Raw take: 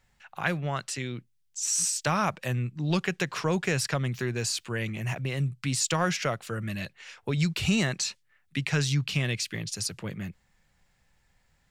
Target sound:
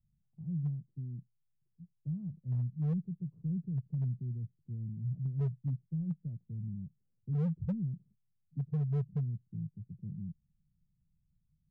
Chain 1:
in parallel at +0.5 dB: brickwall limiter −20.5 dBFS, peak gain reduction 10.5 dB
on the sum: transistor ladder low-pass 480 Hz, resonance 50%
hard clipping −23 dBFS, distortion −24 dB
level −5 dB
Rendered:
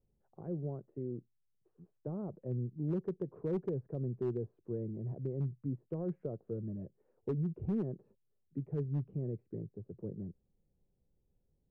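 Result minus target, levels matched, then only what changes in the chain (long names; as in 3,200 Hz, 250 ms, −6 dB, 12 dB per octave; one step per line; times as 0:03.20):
500 Hz band +15.0 dB
change: transistor ladder low-pass 190 Hz, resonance 50%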